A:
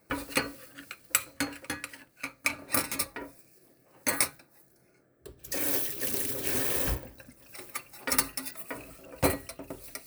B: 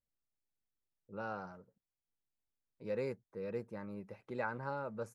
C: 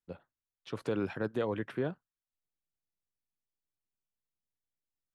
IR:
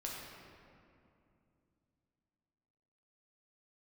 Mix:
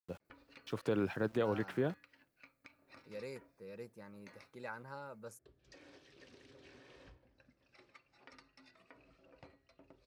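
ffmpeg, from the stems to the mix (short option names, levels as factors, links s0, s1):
-filter_complex "[0:a]lowpass=f=4800:w=0.5412,lowpass=f=4800:w=1.3066,acompressor=threshold=0.00891:ratio=10,adelay=200,volume=0.168[s0];[1:a]crystalizer=i=4:c=0,adelay=250,volume=0.355[s1];[2:a]agate=range=0.0224:threshold=0.00141:ratio=3:detection=peak,aeval=exprs='val(0)*gte(abs(val(0)),0.00158)':c=same,volume=0.891[s2];[s0][s1][s2]amix=inputs=3:normalize=0"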